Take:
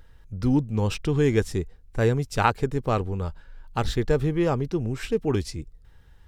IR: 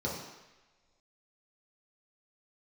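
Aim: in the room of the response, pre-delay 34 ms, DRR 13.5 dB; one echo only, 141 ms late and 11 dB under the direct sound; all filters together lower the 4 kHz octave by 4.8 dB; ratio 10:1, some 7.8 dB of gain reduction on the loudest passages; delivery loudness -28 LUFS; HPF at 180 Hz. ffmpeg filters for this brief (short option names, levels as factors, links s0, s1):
-filter_complex "[0:a]highpass=180,equalizer=f=4000:t=o:g=-6.5,acompressor=threshold=0.0631:ratio=10,aecho=1:1:141:0.282,asplit=2[s0][s1];[1:a]atrim=start_sample=2205,adelay=34[s2];[s1][s2]afir=irnorm=-1:irlink=0,volume=0.106[s3];[s0][s3]amix=inputs=2:normalize=0,volume=1.33"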